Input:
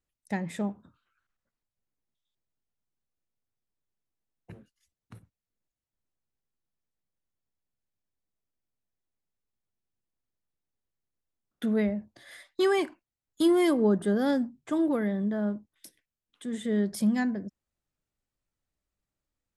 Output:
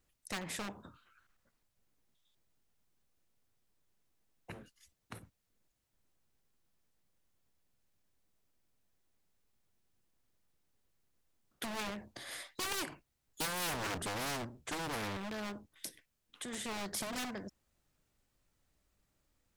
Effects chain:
0:12.86–0:15.17: sub-octave generator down 1 octave, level −3 dB
wave folding −26 dBFS
every bin compressed towards the loudest bin 2 to 1
level +3 dB

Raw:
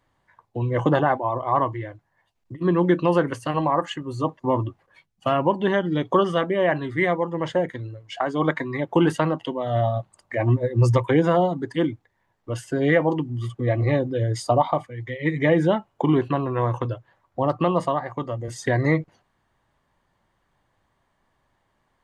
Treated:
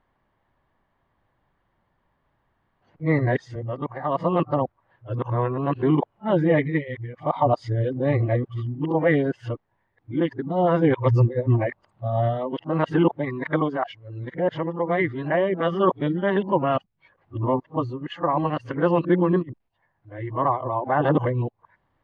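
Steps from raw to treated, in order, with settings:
played backwards from end to start
high-frequency loss of the air 270 metres

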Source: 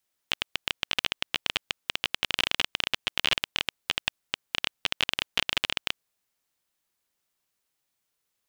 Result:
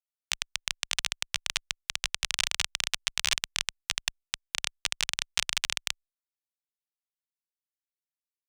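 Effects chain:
harmonic generator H 2 −9 dB, 3 −14 dB, 7 −23 dB, 8 −35 dB, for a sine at −6 dBFS
guitar amp tone stack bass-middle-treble 10-0-10

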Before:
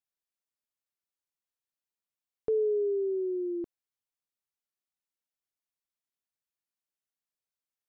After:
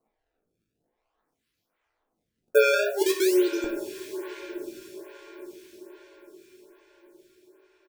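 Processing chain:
time-frequency cells dropped at random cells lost 29%
notch filter 400 Hz, Q 12
reverb reduction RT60 0.59 s
in parallel at +1.5 dB: compressor whose output falls as the input rises −36 dBFS
on the sum: sample-and-hold swept by an LFO 25×, swing 160% 0.47 Hz
double-tracking delay 18 ms −10.5 dB
on a send: feedback delay with all-pass diffusion 1,006 ms, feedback 43%, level −14.5 dB
on the sum: coupled-rooms reverb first 0.58 s, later 4.6 s, from −18 dB, DRR 3 dB
phaser with staggered stages 1.2 Hz
level +9 dB

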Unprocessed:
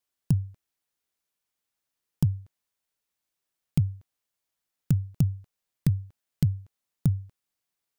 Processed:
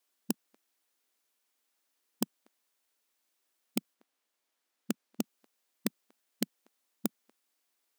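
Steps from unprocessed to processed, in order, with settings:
linear-phase brick-wall high-pass 210 Hz
0:03.93–0:05.23: high-shelf EQ 4,800 Hz → 8,100 Hz −7 dB
level +5.5 dB

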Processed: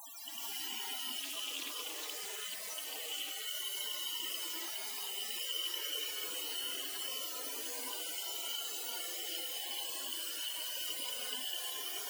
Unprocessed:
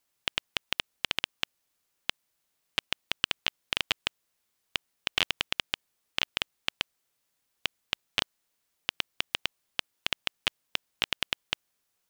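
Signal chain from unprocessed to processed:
sign of each sample alone
elliptic high-pass filter 150 Hz, stop band 40 dB
low-shelf EQ 190 Hz +8 dB
leveller curve on the samples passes 3
spectral peaks only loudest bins 16
echo through a band-pass that steps 421 ms, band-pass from 3,800 Hz, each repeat 0.7 octaves, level −6 dB
reverb whose tail is shaped and stops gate 450 ms rising, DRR −7.5 dB
0:01.22–0:03.47: highs frequency-modulated by the lows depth 0.21 ms
level −2 dB

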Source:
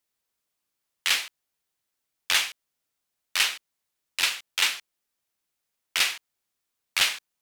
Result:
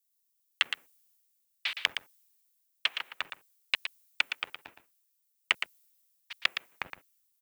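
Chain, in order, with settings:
slices reordered back to front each 150 ms, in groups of 4
treble cut that deepens with the level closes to 2,800 Hz, closed at −20.5 dBFS
low-pass filter 3,800 Hz 24 dB per octave
treble cut that deepens with the level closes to 300 Hz, closed at −27 dBFS
spectral tilt +3.5 dB per octave
noise gate −52 dBFS, range −9 dB
leveller curve on the samples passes 1
background noise violet −64 dBFS
single-tap delay 116 ms −7.5 dB
multiband upward and downward expander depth 40%
level −1.5 dB

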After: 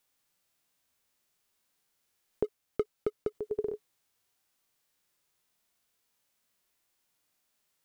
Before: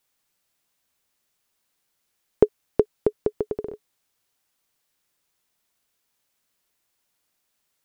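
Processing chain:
0:02.44–0:03.35: leveller curve on the samples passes 2
harmonic and percussive parts rebalanced percussive −17 dB
level +2.5 dB

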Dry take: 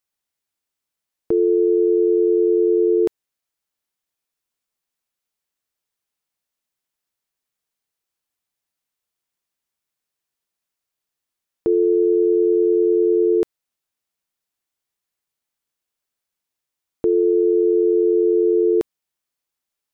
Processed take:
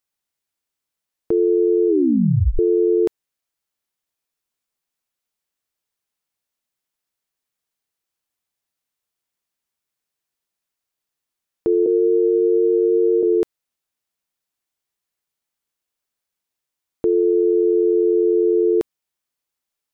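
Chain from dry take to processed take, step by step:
0:01.88: tape stop 0.71 s
0:11.86–0:13.23: three sine waves on the formant tracks

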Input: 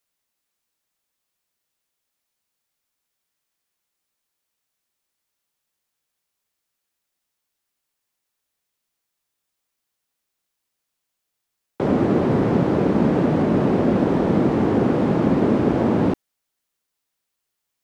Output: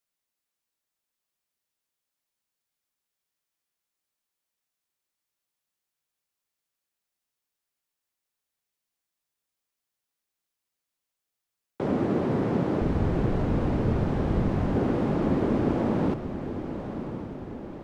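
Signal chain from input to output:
0:12.81–0:14.76: frequency shifter −130 Hz
feedback delay with all-pass diffusion 1,038 ms, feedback 56%, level −9.5 dB
level −7 dB

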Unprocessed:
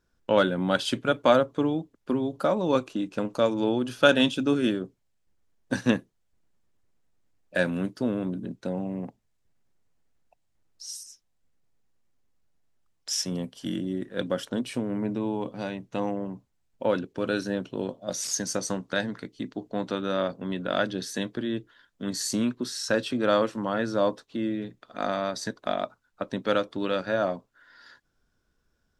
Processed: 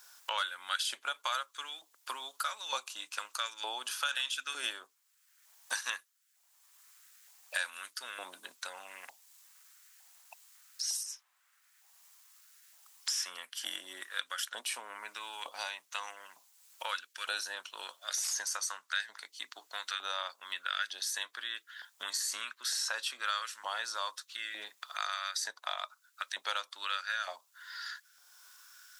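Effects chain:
first-order pre-emphasis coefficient 0.97
brickwall limiter −27.5 dBFS, peak gain reduction 10 dB
auto-filter high-pass saw up 1.1 Hz 790–1,600 Hz
multiband upward and downward compressor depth 70%
level +6.5 dB

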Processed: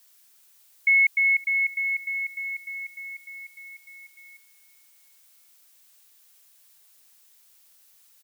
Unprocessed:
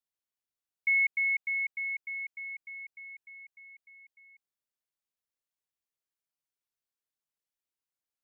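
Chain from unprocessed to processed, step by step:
repeating echo 374 ms, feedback 56%, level −23 dB
background noise blue −65 dBFS
level +7 dB

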